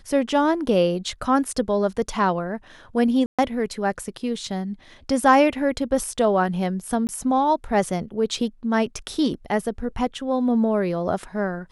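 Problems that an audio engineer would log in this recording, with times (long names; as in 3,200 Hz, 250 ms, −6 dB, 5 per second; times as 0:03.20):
0:03.26–0:03.39: drop-out 126 ms
0:07.07–0:07.09: drop-out 19 ms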